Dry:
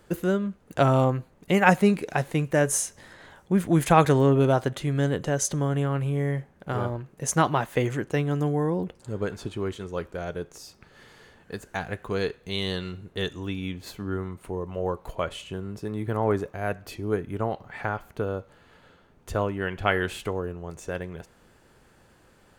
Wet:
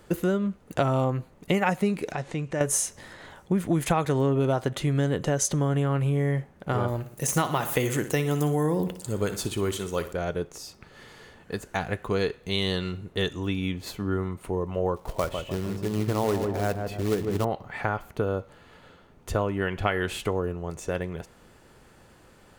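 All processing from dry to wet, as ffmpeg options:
-filter_complex "[0:a]asettb=1/sr,asplit=3[a][b][c];[a]atrim=end=2.124[d];[b]atrim=start=2.12:end=2.61,asetpts=PTS-STARTPTS,afade=t=in:d=0.004:c=qsin,afade=t=out:st=0.486:d=0.004:c=qsin,lowpass=f=7.8k:w=0.5412,lowpass=f=7.8k:w=1.3066,acompressor=threshold=-37dB:ratio=2:attack=3.2:release=140:knee=1:detection=peak[e];[c]atrim=start=2.606[f];[d][e]acrossfade=d=0.004:c1=hsin:c2=qsin[g];[g][f]acrossfade=d=0.004:c1=qsin:c2=hsin,asettb=1/sr,asplit=3[h][i][j];[h]atrim=end=6.884[k];[i]atrim=start=6.88:end=10.13,asetpts=PTS-STARTPTS,afade=t=in:d=0.004:c=qsin,afade=t=out:st=3.246:d=0.004:c=qsin,aemphasis=mode=production:type=75fm,deesser=0.4,aecho=1:1:60|120|180|240|300:0.211|0.106|0.0528|0.0264|0.0132,atrim=end_sample=143325[l];[j]atrim=start=10.126[m];[k][l]acrossfade=d=0.004:c1=hsin:c2=qsin[n];[n][m]acrossfade=d=0.004:c1=qsin:c2=hsin,asettb=1/sr,asplit=3[o][p][q];[o]atrim=end=14.964[r];[p]atrim=start=14.96:end=17.45,asetpts=PTS-STARTPTS,afade=t=in:d=0.004:c=qsin,afade=t=out:st=2.486:d=0.004:c=qsin,highshelf=f=2.4k:g=-9,acrusher=bits=3:mode=log:mix=0:aa=0.000001,asplit=2[s][t];[t]adelay=150,lowpass=f=1.1k:p=1,volume=-6dB,asplit=2[u][v];[v]adelay=150,lowpass=f=1.1k:p=1,volume=0.5,asplit=2[w][x];[x]adelay=150,lowpass=f=1.1k:p=1,volume=0.5,asplit=2[y][z];[z]adelay=150,lowpass=f=1.1k:p=1,volume=0.5,asplit=2[aa][ab];[ab]adelay=150,lowpass=f=1.1k:p=1,volume=0.5,asplit=2[ac][ad];[ad]adelay=150,lowpass=f=1.1k:p=1,volume=0.5[ae];[s][u][w][y][aa][ac][ae]amix=inputs=7:normalize=0,atrim=end_sample=109809[af];[q]atrim=start=17.446[ag];[r][af]acrossfade=d=0.004:c1=hsin:c2=qsin[ah];[ah][ag]acrossfade=d=0.004:c1=qsin:c2=hsin,acompressor=threshold=-24dB:ratio=6,bandreject=f=1.6k:w=19,volume=3.5dB"

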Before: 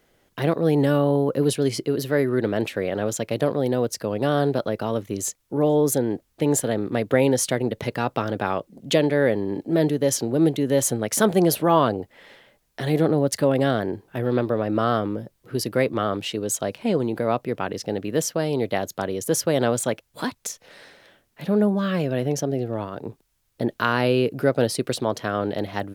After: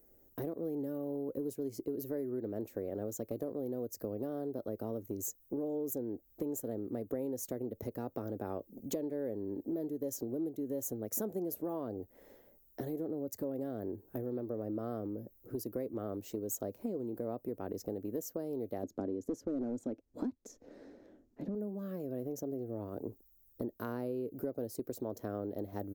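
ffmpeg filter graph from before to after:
-filter_complex "[0:a]asettb=1/sr,asplit=3[a][b][c];[a]atrim=end=18.834[d];[b]atrim=start=18.83:end=21.55,asetpts=PTS-STARTPTS,afade=t=in:d=0.004:c=qsin,afade=t=out:st=2.716:d=0.004:c=qsin,equalizer=f=270:t=o:w=0.9:g=11.5,asoftclip=type=hard:threshold=-12.5dB,lowpass=4.3k[e];[c]atrim=start=21.546[f];[d][e]acrossfade=d=0.004:c1=hsin:c2=qsin[g];[g][f]acrossfade=d=0.004:c1=qsin:c2=hsin,firequalizer=gain_entry='entry(290,0);entry(1000,-16);entry(3000,-28);entry(6700,-7);entry(9500,-13);entry(15000,12)':delay=0.05:min_phase=1,acompressor=threshold=-32dB:ratio=6,equalizer=f=150:t=o:w=0.8:g=-13.5"

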